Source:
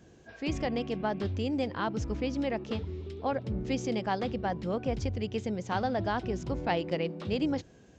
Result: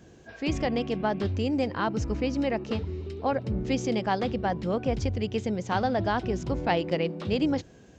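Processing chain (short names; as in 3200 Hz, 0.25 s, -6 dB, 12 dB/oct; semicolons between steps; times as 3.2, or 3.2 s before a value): 1.28–3.53 notch 3400 Hz, Q 11; gain +4 dB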